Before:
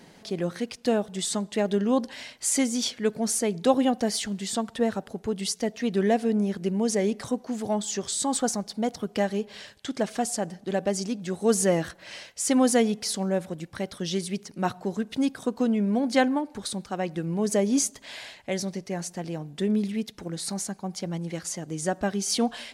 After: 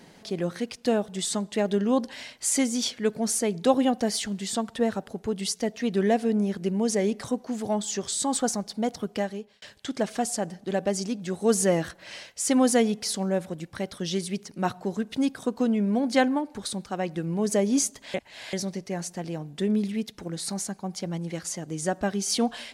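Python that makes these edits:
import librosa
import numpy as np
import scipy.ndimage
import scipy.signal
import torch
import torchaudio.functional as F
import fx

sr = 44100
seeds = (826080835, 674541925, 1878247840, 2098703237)

y = fx.edit(x, sr, fx.fade_out_span(start_s=9.05, length_s=0.57),
    fx.reverse_span(start_s=18.14, length_s=0.39), tone=tone)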